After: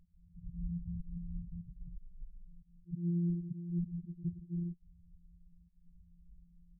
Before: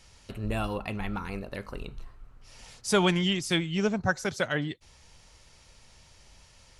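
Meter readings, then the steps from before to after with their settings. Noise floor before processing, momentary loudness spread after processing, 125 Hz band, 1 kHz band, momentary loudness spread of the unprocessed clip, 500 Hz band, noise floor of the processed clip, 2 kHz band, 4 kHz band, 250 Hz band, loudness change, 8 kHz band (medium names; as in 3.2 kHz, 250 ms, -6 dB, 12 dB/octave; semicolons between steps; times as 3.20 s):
-57 dBFS, 19 LU, -4.5 dB, under -40 dB, 17 LU, under -25 dB, -65 dBFS, under -40 dB, under -40 dB, -8.0 dB, -10.5 dB, under -40 dB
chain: sorted samples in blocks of 256 samples; amplifier tone stack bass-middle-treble 6-0-2; slow attack 192 ms; loudest bins only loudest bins 4; trim +13.5 dB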